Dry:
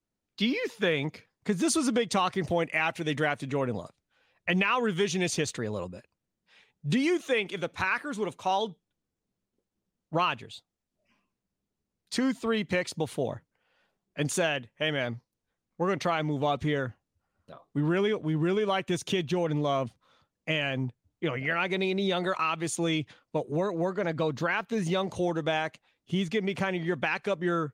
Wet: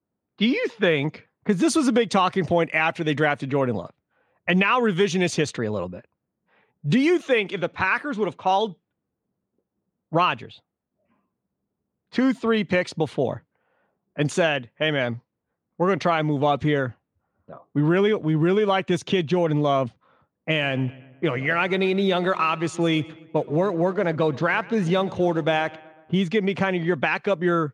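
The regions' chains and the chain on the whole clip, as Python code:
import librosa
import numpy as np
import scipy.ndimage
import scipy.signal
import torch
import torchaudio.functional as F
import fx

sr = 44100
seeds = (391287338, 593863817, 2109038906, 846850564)

y = fx.chain(x, sr, fx.backlash(play_db=-48.5),
    fx.echo_feedback(ms=124, feedback_pct=58, wet_db=-21.0), at=(20.5, 26.15))
y = fx.env_lowpass(y, sr, base_hz=1200.0, full_db=-24.0)
y = scipy.signal.sosfilt(scipy.signal.butter(2, 87.0, 'highpass', fs=sr, output='sos'), y)
y = fx.high_shelf(y, sr, hz=5200.0, db=-10.0)
y = y * 10.0 ** (7.0 / 20.0)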